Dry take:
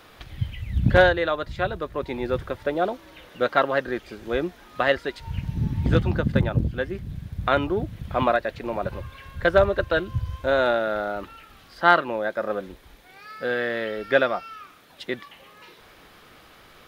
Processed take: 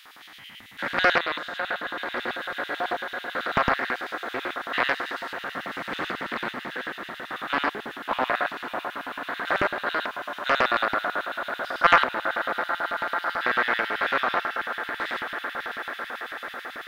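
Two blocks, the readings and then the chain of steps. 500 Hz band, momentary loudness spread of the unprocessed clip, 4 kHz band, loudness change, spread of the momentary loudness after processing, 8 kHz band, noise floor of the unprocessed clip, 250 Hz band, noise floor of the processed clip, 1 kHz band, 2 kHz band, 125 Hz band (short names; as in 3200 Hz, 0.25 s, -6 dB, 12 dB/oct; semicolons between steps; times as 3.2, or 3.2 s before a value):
-8.0 dB, 14 LU, +3.0 dB, -2.5 dB, 11 LU, n/a, -51 dBFS, -8.0 dB, -44 dBFS, +1.5 dB, +2.5 dB, -20.0 dB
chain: stepped spectrum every 0.2 s; tilt +3 dB/oct; swelling echo 0.143 s, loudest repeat 8, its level -15.5 dB; LFO high-pass square 9.1 Hz 260–3000 Hz; band shelf 1200 Hz +11 dB; Doppler distortion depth 0.94 ms; gain -5 dB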